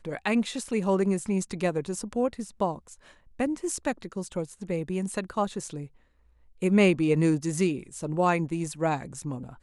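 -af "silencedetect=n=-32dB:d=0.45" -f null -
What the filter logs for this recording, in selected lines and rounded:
silence_start: 2.76
silence_end: 3.40 | silence_duration: 0.64
silence_start: 5.84
silence_end: 6.62 | silence_duration: 0.78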